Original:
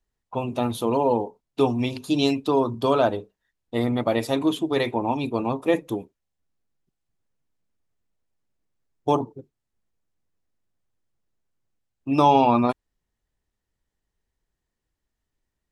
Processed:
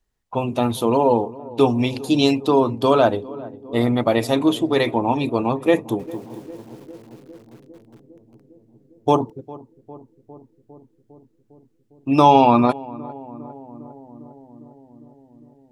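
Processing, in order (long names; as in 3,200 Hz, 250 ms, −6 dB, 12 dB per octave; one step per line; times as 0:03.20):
feedback echo with a low-pass in the loop 404 ms, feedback 79%, low-pass 940 Hz, level −18.5 dB
0:05.77–0:09.30: feedback echo at a low word length 224 ms, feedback 55%, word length 8 bits, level −9.5 dB
level +4.5 dB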